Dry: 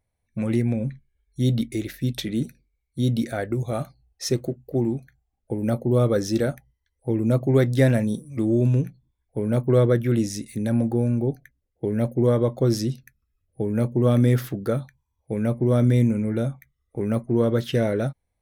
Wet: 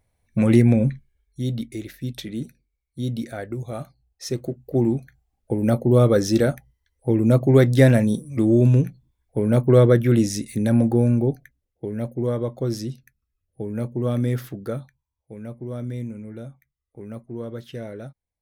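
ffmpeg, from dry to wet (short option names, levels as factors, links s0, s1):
-af "volume=6.31,afade=t=out:st=0.81:d=0.62:silence=0.251189,afade=t=in:st=4.28:d=0.62:silence=0.375837,afade=t=out:st=11.11:d=0.77:silence=0.375837,afade=t=out:st=14.78:d=0.54:silence=0.421697"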